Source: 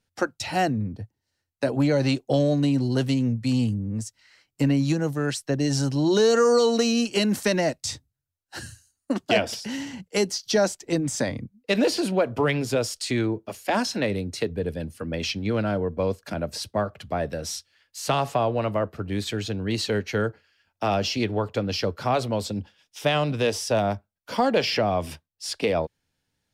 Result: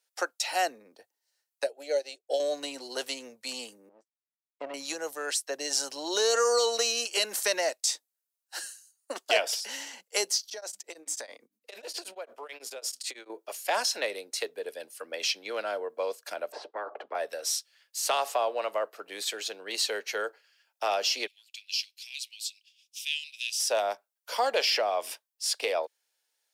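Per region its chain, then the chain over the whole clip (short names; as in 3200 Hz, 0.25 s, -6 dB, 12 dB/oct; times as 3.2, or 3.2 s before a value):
1.64–2.4 bell 640 Hz +4 dB 1.5 oct + fixed phaser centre 450 Hz, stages 4 + upward expander 2.5:1, over -33 dBFS
3.89–4.74 LPF 1500 Hz + power-law curve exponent 2
10.45–13.3 notches 50/100/150/200/250/300 Hz + compressor 16:1, threshold -28 dBFS + beating tremolo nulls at 9.1 Hz
16.52–17.15 Butterworth band-pass 390 Hz, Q 1.2 + spectral compressor 4:1
21.27–23.6 elliptic high-pass 2500 Hz, stop band 50 dB + high shelf 8100 Hz -4.5 dB
whole clip: HPF 480 Hz 24 dB/oct; high shelf 5000 Hz +11 dB; gain -3.5 dB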